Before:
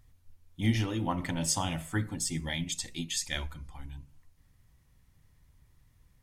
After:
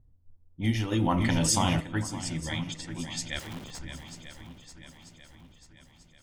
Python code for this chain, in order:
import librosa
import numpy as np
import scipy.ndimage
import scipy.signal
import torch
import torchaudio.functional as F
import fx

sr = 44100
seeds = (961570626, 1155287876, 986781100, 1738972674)

y = fx.env_lowpass(x, sr, base_hz=460.0, full_db=-26.5)
y = fx.overflow_wrap(y, sr, gain_db=41.5, at=(3.39, 3.79))
y = fx.echo_swing(y, sr, ms=940, ratio=1.5, feedback_pct=46, wet_db=-10.0)
y = fx.env_flatten(y, sr, amount_pct=70, at=(0.91, 1.79), fade=0.02)